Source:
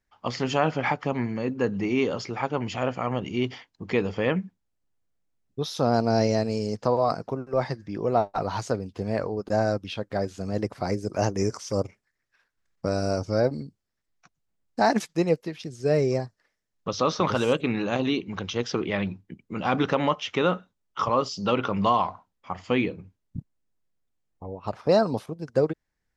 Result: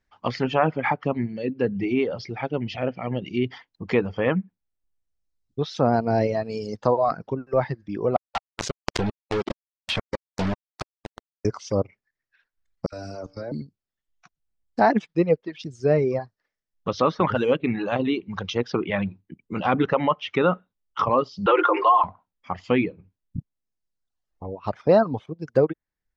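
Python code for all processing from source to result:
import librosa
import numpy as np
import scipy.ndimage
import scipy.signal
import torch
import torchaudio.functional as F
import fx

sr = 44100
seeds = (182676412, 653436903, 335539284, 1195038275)

y = fx.chain(x, sr, fx.steep_lowpass(hz=6100.0, slope=72),
    fx.peak_eq(hz=1100.0, db=-12.0, octaves=0.82), at=(1.15, 3.5))
y = fx.chain(y, sr, fx.gate_flip(shuts_db=-17.0, range_db=-41),
    fx.quant_companded(bits=2),
    fx.pre_swell(db_per_s=22.0), at=(8.16, 11.45))
y = fx.chain(y, sr, fx.dispersion(late='lows', ms=62.0, hz=2200.0),
    fx.level_steps(step_db=14),
    fx.comb_fb(f0_hz=58.0, decay_s=1.0, harmonics='all', damping=0.0, mix_pct=60), at=(12.86, 13.52))
y = fx.chain(y, sr, fx.cheby_ripple_highpass(hz=310.0, ripple_db=6),
    fx.comb(ms=5.7, depth=0.64),
    fx.env_flatten(amount_pct=70), at=(21.46, 22.04))
y = fx.dereverb_blind(y, sr, rt60_s=1.2)
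y = scipy.signal.sosfilt(scipy.signal.butter(2, 5900.0, 'lowpass', fs=sr, output='sos'), y)
y = fx.env_lowpass_down(y, sr, base_hz=2500.0, full_db=-24.0)
y = y * 10.0 ** (3.5 / 20.0)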